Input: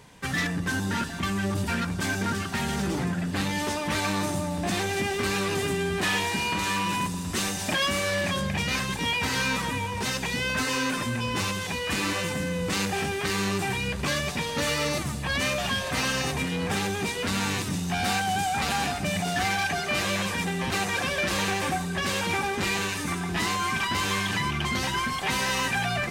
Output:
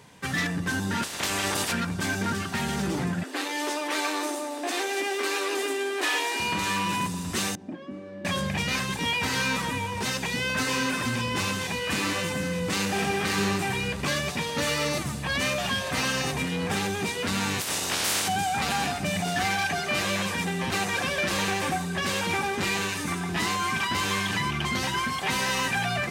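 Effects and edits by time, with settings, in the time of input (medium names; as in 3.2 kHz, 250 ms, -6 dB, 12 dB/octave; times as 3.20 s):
1.02–1.71 s: spectral peaks clipped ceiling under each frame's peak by 25 dB
3.23–6.40 s: steep high-pass 270 Hz 72 dB/octave
7.55–8.25 s: band-pass filter 280 Hz, Q 2.7
10.13–10.75 s: echo throw 460 ms, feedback 75%, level -8 dB
12.80–13.35 s: reverb throw, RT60 2.6 s, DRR 2 dB
17.59–18.27 s: spectral peaks clipped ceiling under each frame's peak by 28 dB
whole clip: high-pass 79 Hz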